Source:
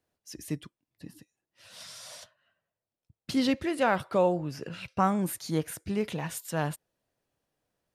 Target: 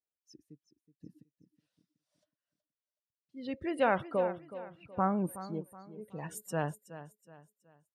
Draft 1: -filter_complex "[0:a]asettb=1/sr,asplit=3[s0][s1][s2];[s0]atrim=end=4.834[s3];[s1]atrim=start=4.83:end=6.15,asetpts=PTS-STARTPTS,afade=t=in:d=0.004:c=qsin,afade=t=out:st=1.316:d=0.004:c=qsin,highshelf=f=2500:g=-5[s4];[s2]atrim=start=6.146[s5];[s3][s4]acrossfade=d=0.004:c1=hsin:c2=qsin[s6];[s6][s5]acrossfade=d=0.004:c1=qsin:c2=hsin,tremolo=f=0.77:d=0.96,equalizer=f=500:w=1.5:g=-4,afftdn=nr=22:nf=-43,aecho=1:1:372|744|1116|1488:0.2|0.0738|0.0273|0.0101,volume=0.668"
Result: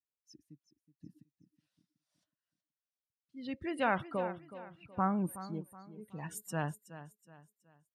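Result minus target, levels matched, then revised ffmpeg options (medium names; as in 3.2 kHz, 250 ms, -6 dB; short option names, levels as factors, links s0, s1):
500 Hz band -3.5 dB
-filter_complex "[0:a]asettb=1/sr,asplit=3[s0][s1][s2];[s0]atrim=end=4.834[s3];[s1]atrim=start=4.83:end=6.15,asetpts=PTS-STARTPTS,afade=t=in:d=0.004:c=qsin,afade=t=out:st=1.316:d=0.004:c=qsin,highshelf=f=2500:g=-5[s4];[s2]atrim=start=6.146[s5];[s3][s4]acrossfade=d=0.004:c1=hsin:c2=qsin[s6];[s6][s5]acrossfade=d=0.004:c1=qsin:c2=hsin,tremolo=f=0.77:d=0.96,equalizer=f=500:w=1.5:g=3,afftdn=nr=22:nf=-43,aecho=1:1:372|744|1116|1488:0.2|0.0738|0.0273|0.0101,volume=0.668"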